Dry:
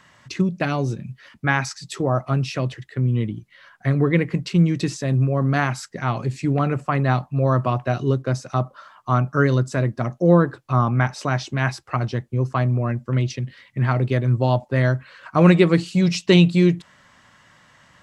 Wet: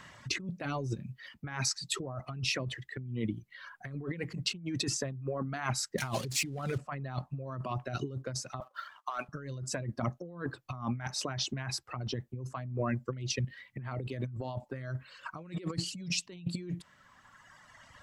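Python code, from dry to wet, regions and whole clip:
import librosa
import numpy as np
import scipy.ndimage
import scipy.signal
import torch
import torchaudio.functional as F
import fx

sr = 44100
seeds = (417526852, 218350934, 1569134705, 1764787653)

y = fx.chain(x, sr, fx.crossing_spikes(level_db=-16.5),
    fx.air_absorb(metres=68.0), at=(5.98, 6.78))
y = fx.chain(y, sr, fx.highpass(hz=770.0, slope=12),
    fx.leveller(passes=1), at=(8.6, 9.29))
y = fx.dereverb_blind(y, sr, rt60_s=2.0)
y = fx.low_shelf(y, sr, hz=97.0, db=4.0)
y = fx.over_compress(y, sr, threshold_db=-30.0, ratio=-1.0)
y = y * librosa.db_to_amplitude(-7.0)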